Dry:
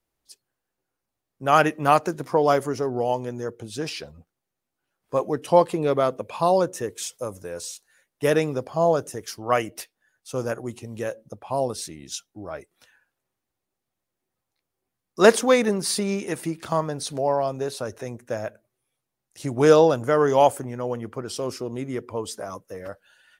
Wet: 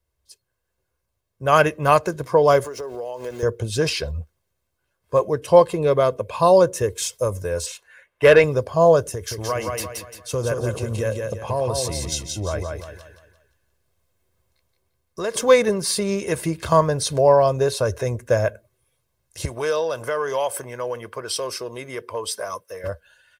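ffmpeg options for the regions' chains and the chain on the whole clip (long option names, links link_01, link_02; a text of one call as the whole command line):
ffmpeg -i in.wav -filter_complex "[0:a]asettb=1/sr,asplit=3[link_01][link_02][link_03];[link_01]atrim=end=2.644[link_04];[link_02]atrim=start=2.64:end=3.43,asetpts=PTS-STARTPTS,afade=type=in:duration=0.004:curve=qsin,afade=type=out:start_time=0.786:duration=0.004:curve=qsin,highpass=340,aeval=exprs='val(0)*gte(abs(val(0)),0.00531)':channel_layout=same,acompressor=threshold=-32dB:ratio=10:attack=3.2:release=140:knee=1:detection=peak[link_05];[link_03]atrim=start=3.426[link_06];[link_04][link_05]acrossfade=duration=0.004:curve1=hsin:curve2=qsin[link_07];[link_07][link_06]acrossfade=duration=0.004:curve1=qsin:curve2=hsin,asettb=1/sr,asplit=3[link_08][link_09][link_10];[link_08]atrim=end=7.664[link_11];[link_09]atrim=start=7.66:end=8.44,asetpts=PTS-STARTPTS,afade=type=in:duration=0.004:curve=qsin,afade=type=out:start_time=0.776:duration=0.004:curve=qsin,highshelf=frequency=3400:width_type=q:width=1.5:gain=-10,asplit=2[link_12][link_13];[link_13]highpass=frequency=720:poles=1,volume=13dB,asoftclip=type=tanh:threshold=-7.5dB[link_14];[link_12][link_14]amix=inputs=2:normalize=0,lowpass=frequency=6100:poles=1,volume=-6dB[link_15];[link_10]atrim=start=8.436[link_16];[link_11][link_15]acrossfade=duration=0.004:curve1=hsin:curve2=qsin[link_17];[link_17][link_16]acrossfade=duration=0.004:curve1=qsin:curve2=hsin,asettb=1/sr,asplit=3[link_18][link_19][link_20];[link_18]atrim=end=9.124[link_21];[link_19]atrim=start=9.12:end=15.37,asetpts=PTS-STARTPTS,afade=type=in:duration=0.004:curve=qsin,afade=type=out:start_time=6.246:duration=0.004:curve=qsin,acompressor=threshold=-31dB:ratio=3:attack=3.2:release=140:knee=1:detection=peak,aecho=1:1:173|346|519|692|865:0.631|0.246|0.096|0.0374|0.0146,atrim=end_sample=275625[link_22];[link_20]atrim=start=15.366[link_23];[link_21][link_22]acrossfade=duration=0.004:curve1=hsin:curve2=qsin[link_24];[link_24][link_23]acrossfade=duration=0.004:curve1=qsin:curve2=hsin,asettb=1/sr,asplit=3[link_25][link_26][link_27];[link_25]atrim=end=19.454[link_28];[link_26]atrim=start=19.45:end=22.84,asetpts=PTS-STARTPTS,afade=type=in:duration=0.004:curve=qsin,afade=type=out:start_time=3.386:duration=0.004:curve=qsin,acompressor=threshold=-25dB:ratio=3:attack=3.2:release=140:knee=1:detection=peak,highpass=frequency=1000:poles=1,bandreject=frequency=6900:width=6.2[link_29];[link_27]atrim=start=22.836[link_30];[link_28][link_29]acrossfade=duration=0.004:curve1=hsin:curve2=qsin[link_31];[link_31][link_30]acrossfade=duration=0.004:curve1=qsin:curve2=hsin,equalizer=frequency=72:width=1.5:gain=14.5,aecho=1:1:1.9:0.52,dynaudnorm=framelen=200:gausssize=7:maxgain=8.5dB,volume=-1dB" out.wav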